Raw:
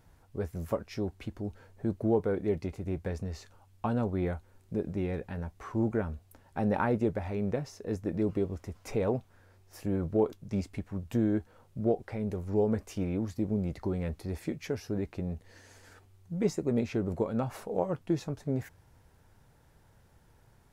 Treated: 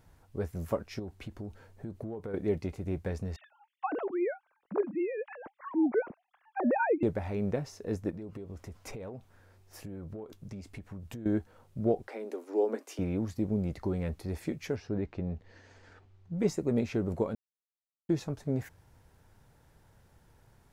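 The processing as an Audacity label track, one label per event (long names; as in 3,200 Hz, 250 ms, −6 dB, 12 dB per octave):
0.990000	2.340000	downward compressor 10 to 1, threshold −35 dBFS
3.360000	7.030000	three sine waves on the formant tracks
8.100000	11.260000	downward compressor 12 to 1, threshold −38 dBFS
12.070000	12.990000	Butterworth high-pass 240 Hz 96 dB per octave
14.760000	16.390000	high-frequency loss of the air 140 metres
17.350000	18.090000	silence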